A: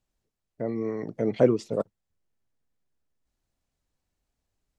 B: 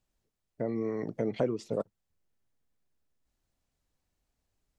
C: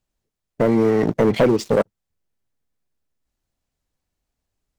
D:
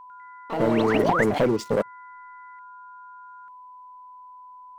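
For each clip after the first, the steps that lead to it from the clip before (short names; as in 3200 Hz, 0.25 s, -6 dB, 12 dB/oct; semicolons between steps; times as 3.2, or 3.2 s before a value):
compressor 3:1, threshold -28 dBFS, peak gain reduction 11.5 dB
sample leveller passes 3; gain +7 dB
painted sound rise, 0.94–1.24, 240–2200 Hz -18 dBFS; whine 1000 Hz -37 dBFS; echoes that change speed 99 ms, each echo +6 st, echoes 2, each echo -6 dB; gain -5.5 dB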